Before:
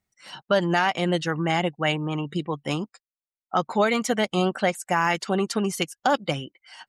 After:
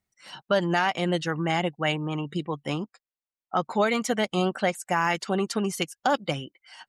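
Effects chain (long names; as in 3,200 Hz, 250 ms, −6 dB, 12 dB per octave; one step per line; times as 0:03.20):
0:02.70–0:03.64: high-shelf EQ 6,500 Hz −12 dB
level −2 dB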